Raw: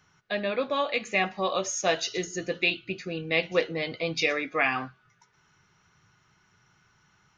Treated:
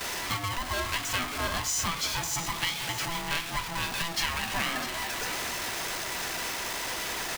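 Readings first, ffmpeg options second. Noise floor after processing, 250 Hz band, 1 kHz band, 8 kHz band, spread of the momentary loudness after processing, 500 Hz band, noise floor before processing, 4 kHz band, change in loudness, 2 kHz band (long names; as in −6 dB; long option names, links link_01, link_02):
−36 dBFS, −5.0 dB, +0.5 dB, +6.5 dB, 3 LU, −11.0 dB, −66 dBFS, +3.5 dB, −2.0 dB, −1.5 dB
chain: -af "aeval=exprs='val(0)+0.5*0.0473*sgn(val(0))':channel_layout=same,acompressor=threshold=-26dB:ratio=6,lowshelf=frequency=310:gain=-11.5,aecho=1:1:653:0.299,agate=range=-10dB:threshold=-39dB:ratio=16:detection=peak,aeval=exprs='val(0)*sgn(sin(2*PI*500*n/s))':channel_layout=same"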